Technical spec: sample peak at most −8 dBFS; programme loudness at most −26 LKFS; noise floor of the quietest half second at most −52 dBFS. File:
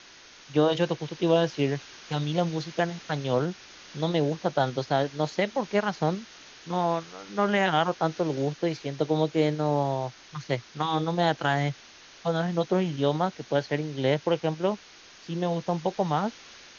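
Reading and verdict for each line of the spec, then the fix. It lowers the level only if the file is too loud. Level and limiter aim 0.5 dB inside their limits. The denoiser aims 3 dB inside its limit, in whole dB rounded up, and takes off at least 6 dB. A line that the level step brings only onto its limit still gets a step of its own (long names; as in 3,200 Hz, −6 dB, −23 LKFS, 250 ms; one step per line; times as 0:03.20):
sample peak −10.0 dBFS: in spec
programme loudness −27.5 LKFS: in spec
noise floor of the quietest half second −51 dBFS: out of spec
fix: broadband denoise 6 dB, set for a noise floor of −51 dBFS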